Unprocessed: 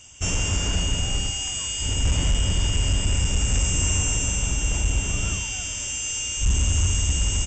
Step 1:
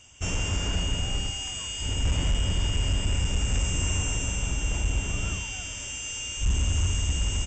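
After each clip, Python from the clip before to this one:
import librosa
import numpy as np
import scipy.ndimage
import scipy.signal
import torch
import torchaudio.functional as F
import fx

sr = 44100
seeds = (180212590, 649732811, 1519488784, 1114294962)

y = fx.bass_treble(x, sr, bass_db=-1, treble_db=-6)
y = y * 10.0 ** (-2.5 / 20.0)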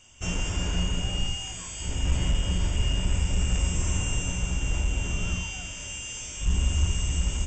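y = fx.room_shoebox(x, sr, seeds[0], volume_m3=210.0, walls='furnished', distance_m=0.97)
y = y * 10.0 ** (-2.5 / 20.0)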